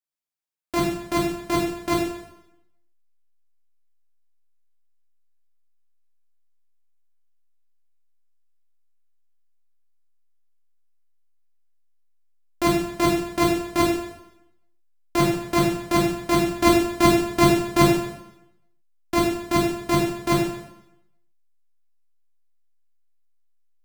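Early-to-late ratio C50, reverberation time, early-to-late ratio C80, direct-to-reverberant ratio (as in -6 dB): 2.0 dB, 0.85 s, 5.5 dB, -5.5 dB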